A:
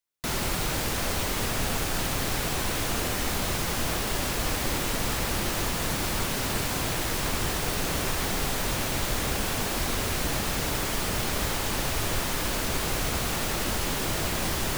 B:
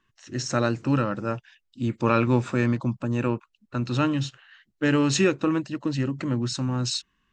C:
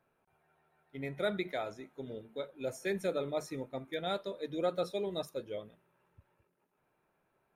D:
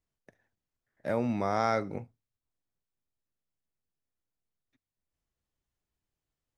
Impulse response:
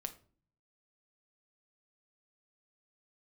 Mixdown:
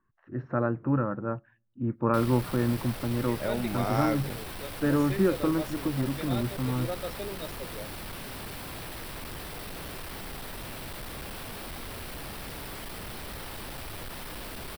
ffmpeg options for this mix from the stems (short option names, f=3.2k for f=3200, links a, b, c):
-filter_complex "[0:a]asoftclip=type=hard:threshold=-28.5dB,equalizer=f=6.7k:w=3.2:g=-13,adelay=1900,volume=-7.5dB[a];[1:a]lowpass=f=1.5k:w=0.5412,lowpass=f=1.5k:w=1.3066,volume=-4dB,asplit=2[b][c];[c]volume=-16.5dB[d];[2:a]adelay=2250,volume=-3dB[e];[3:a]adelay=2350,volume=-2dB[f];[4:a]atrim=start_sample=2205[g];[d][g]afir=irnorm=-1:irlink=0[h];[a][b][e][f][h]amix=inputs=5:normalize=0"